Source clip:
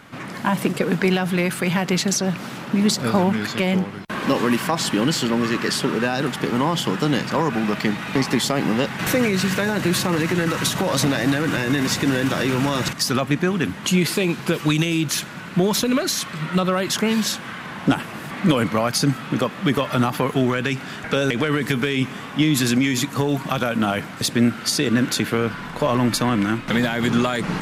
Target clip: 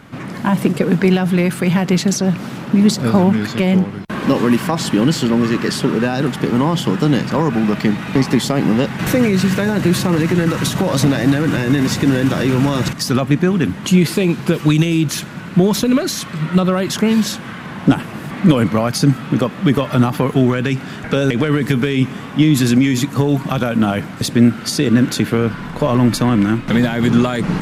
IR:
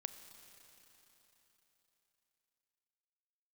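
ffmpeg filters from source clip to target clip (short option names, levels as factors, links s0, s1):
-af "lowshelf=f=450:g=8.5"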